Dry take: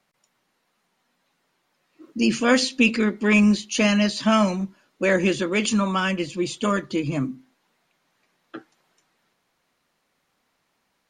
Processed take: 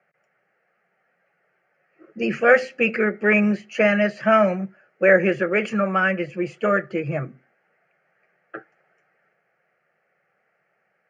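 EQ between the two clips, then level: HPF 140 Hz 24 dB/oct; Chebyshev low-pass 1900 Hz, order 2; fixed phaser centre 1000 Hz, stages 6; +7.5 dB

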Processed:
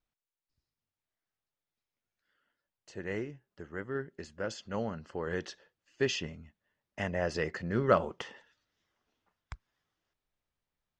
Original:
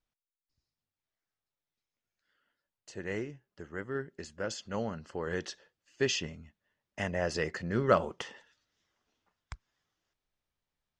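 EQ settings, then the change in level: high shelf 6500 Hz -10.5 dB; 0.0 dB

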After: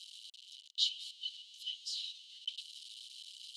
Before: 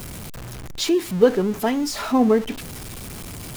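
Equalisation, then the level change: rippled Chebyshev high-pass 2900 Hz, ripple 6 dB; tape spacing loss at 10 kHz 37 dB; +13.5 dB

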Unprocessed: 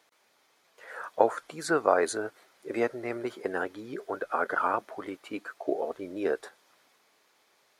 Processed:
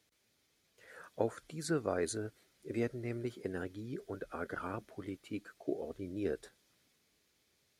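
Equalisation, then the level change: HPF 40 Hz; passive tone stack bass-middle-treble 10-0-1; low shelf 76 Hz +11.5 dB; +15.5 dB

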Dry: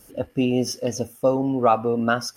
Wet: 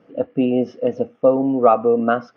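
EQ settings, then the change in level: speaker cabinet 150–3200 Hz, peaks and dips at 170 Hz +6 dB, 290 Hz +5 dB, 480 Hz +9 dB, 680 Hz +8 dB, 1200 Hz +7 dB, 2100 Hz +3 dB; bell 200 Hz +5 dB 1.9 oct; -4.0 dB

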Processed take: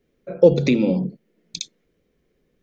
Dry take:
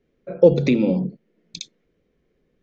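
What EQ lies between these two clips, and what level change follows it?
high shelf 5300 Hz +9 dB; 0.0 dB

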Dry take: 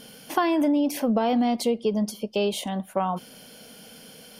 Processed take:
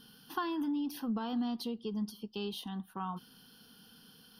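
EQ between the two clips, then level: fixed phaser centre 2200 Hz, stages 6; -8.5 dB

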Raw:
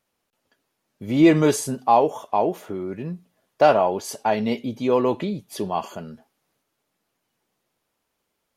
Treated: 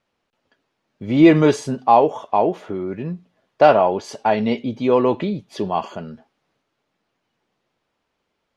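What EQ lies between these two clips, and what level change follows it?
LPF 4300 Hz 12 dB/oct; +3.5 dB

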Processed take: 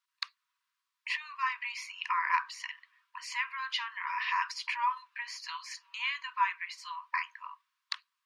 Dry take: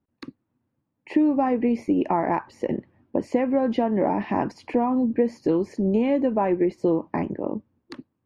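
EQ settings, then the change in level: brick-wall FIR high-pass 940 Hz; bell 4100 Hz +10.5 dB 1.8 oct; +1.5 dB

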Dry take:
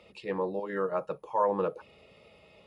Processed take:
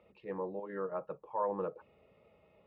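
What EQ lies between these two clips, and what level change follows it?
LPF 1700 Hz 12 dB/oct; -7.0 dB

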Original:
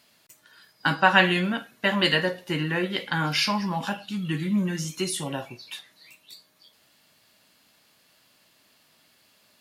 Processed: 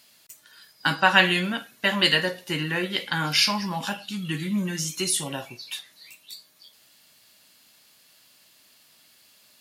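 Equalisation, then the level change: high shelf 2700 Hz +9.5 dB; -2.0 dB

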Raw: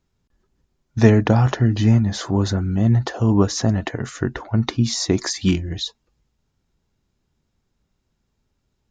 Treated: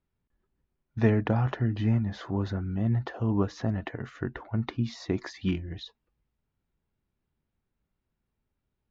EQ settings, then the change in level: Chebyshev low-pass 2500 Hz, order 2; -9.0 dB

